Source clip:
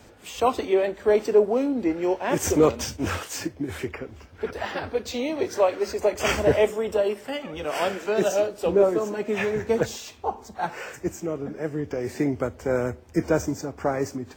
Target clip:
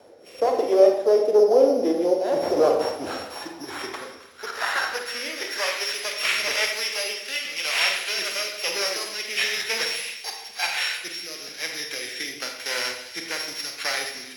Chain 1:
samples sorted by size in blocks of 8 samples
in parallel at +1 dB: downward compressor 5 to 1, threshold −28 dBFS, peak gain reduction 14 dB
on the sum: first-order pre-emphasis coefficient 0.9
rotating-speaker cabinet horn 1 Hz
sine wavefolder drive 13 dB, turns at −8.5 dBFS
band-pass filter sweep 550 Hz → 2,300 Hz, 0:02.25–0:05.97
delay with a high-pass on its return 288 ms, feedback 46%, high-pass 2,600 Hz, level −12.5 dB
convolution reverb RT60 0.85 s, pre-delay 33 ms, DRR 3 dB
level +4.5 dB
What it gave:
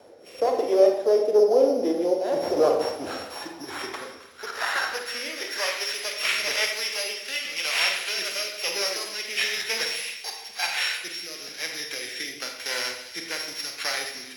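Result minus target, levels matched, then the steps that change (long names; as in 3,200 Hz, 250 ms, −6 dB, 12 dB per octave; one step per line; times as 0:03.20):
downward compressor: peak gain reduction +6.5 dB
change: downward compressor 5 to 1, threshold −20 dBFS, peak gain reduction 7.5 dB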